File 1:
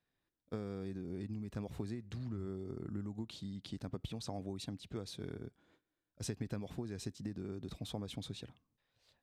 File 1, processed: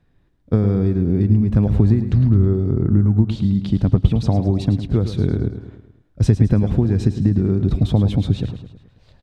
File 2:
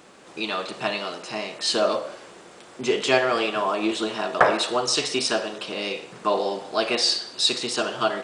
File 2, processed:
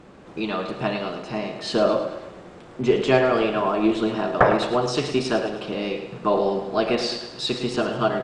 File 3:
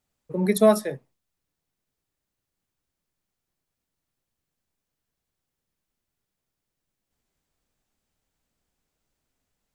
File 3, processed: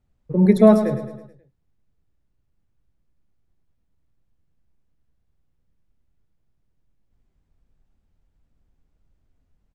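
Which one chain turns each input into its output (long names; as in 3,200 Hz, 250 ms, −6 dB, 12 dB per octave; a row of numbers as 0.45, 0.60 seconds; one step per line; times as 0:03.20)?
RIAA equalisation playback
repeating echo 107 ms, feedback 50%, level −10.5 dB
normalise the peak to −1.5 dBFS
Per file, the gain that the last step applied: +16.5, 0.0, +1.0 decibels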